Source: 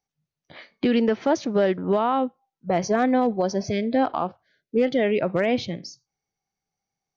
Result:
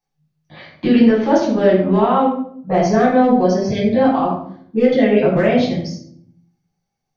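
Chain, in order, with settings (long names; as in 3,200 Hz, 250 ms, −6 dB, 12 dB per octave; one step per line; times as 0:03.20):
rectangular room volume 1,000 cubic metres, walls furnished, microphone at 9.2 metres
level −4.5 dB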